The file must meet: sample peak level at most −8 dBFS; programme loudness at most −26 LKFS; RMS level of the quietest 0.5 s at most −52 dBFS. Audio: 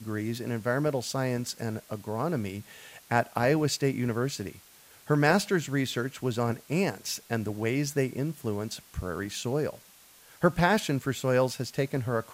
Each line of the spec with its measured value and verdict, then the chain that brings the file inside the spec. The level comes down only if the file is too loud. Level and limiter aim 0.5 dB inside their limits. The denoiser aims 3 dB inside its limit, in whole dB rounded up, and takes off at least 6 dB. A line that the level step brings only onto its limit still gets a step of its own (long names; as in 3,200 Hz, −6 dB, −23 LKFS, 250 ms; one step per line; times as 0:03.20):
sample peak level −10.0 dBFS: in spec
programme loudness −29.0 LKFS: in spec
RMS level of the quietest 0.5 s −56 dBFS: in spec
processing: no processing needed